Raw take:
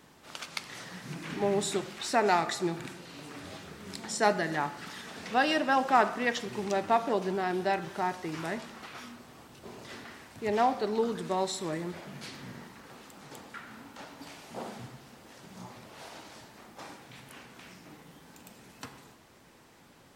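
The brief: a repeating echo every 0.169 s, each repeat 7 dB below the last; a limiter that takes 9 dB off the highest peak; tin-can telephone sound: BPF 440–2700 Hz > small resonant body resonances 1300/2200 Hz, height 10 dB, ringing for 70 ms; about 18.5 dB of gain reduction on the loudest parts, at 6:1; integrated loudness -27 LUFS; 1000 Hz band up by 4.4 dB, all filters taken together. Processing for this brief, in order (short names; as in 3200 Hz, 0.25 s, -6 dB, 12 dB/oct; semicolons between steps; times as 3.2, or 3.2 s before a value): bell 1000 Hz +6.5 dB; compressor 6:1, threshold -36 dBFS; limiter -29 dBFS; BPF 440–2700 Hz; feedback echo 0.169 s, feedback 45%, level -7 dB; small resonant body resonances 1300/2200 Hz, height 10 dB, ringing for 70 ms; gain +16 dB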